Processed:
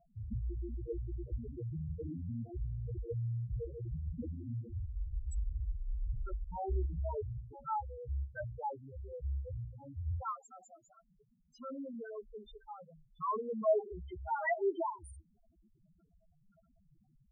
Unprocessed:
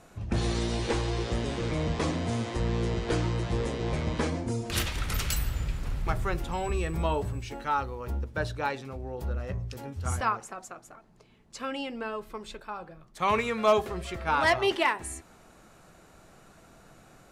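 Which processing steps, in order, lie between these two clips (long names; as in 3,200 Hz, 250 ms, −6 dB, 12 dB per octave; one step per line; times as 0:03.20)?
spectral peaks only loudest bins 2
0:06.49–0:06.95: double-tracking delay 16 ms −4 dB
level −4 dB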